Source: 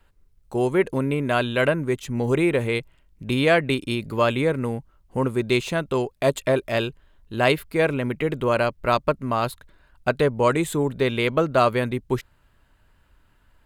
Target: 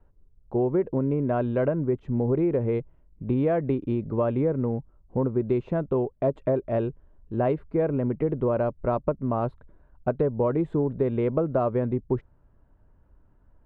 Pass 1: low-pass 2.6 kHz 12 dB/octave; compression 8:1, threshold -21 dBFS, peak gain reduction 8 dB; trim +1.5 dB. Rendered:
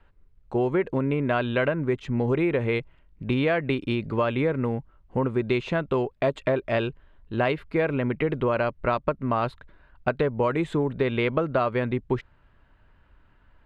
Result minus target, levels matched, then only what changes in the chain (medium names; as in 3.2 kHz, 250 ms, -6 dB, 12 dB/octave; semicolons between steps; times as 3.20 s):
2 kHz band +13.5 dB
change: low-pass 700 Hz 12 dB/octave